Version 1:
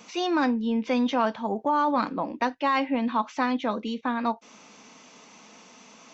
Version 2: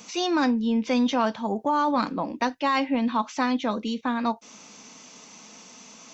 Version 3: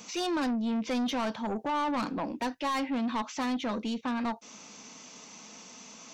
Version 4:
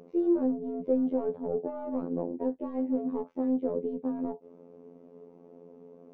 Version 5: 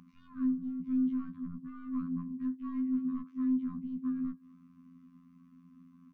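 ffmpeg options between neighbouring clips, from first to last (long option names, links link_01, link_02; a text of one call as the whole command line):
ffmpeg -i in.wav -af "bass=frequency=250:gain=4,treble=frequency=4000:gain=9" out.wav
ffmpeg -i in.wav -af "asoftclip=type=tanh:threshold=-25dB,volume=-1.5dB" out.wav
ffmpeg -i in.wav -af "lowpass=frequency=450:width_type=q:width=4.9,afftfilt=real='hypot(re,im)*cos(PI*b)':imag='0':win_size=2048:overlap=0.75,volume=1.5dB" out.wav
ffmpeg -i in.wav -filter_complex "[0:a]afftfilt=real='re*(1-between(b*sr/4096,260,1000))':imag='im*(1-between(b*sr/4096,260,1000))':win_size=4096:overlap=0.75,asplit=2[link_01][link_02];[link_02]adelay=210,highpass=300,lowpass=3400,asoftclip=type=hard:threshold=-31dB,volume=-25dB[link_03];[link_01][link_03]amix=inputs=2:normalize=0" out.wav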